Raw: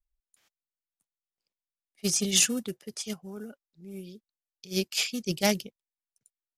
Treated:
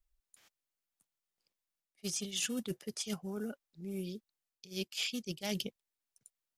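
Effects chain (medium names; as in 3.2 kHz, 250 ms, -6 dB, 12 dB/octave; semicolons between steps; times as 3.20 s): dynamic bell 3.2 kHz, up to +7 dB, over -44 dBFS, Q 2.8; reverse; compression 8:1, threshold -38 dBFS, peak gain reduction 21.5 dB; reverse; trim +3.5 dB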